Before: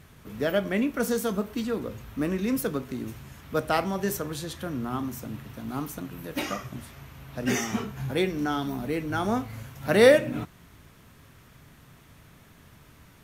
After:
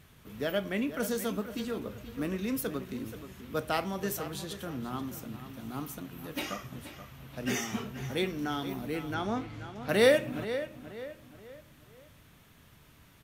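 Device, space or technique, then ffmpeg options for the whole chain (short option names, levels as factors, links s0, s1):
presence and air boost: -filter_complex "[0:a]asettb=1/sr,asplit=3[s0][s1][s2];[s0]atrim=end=9.144[s3];[s1]atrim=start=9.14:end=9.89,asetpts=PTS-STARTPTS,afade=t=in:d=0.004:c=qsin,afade=t=out:st=0.746:d=0.004:c=qsin,lowpass=5700[s4];[s2]atrim=start=9.886[s5];[s3][s4]acrossfade=d=0.004:c1=hsin:c2=qsin[s6];[s6][s5]acrossfade=d=0.004:c1=qsin:c2=hsin,equalizer=f=3200:t=o:w=0.92:g=4,highshelf=f=11000:g=5.5,asplit=2[s7][s8];[s8]adelay=479,lowpass=f=3700:p=1,volume=0.266,asplit=2[s9][s10];[s10]adelay=479,lowpass=f=3700:p=1,volume=0.4,asplit=2[s11][s12];[s12]adelay=479,lowpass=f=3700:p=1,volume=0.4,asplit=2[s13][s14];[s14]adelay=479,lowpass=f=3700:p=1,volume=0.4[s15];[s7][s9][s11][s13][s15]amix=inputs=5:normalize=0,volume=0.501"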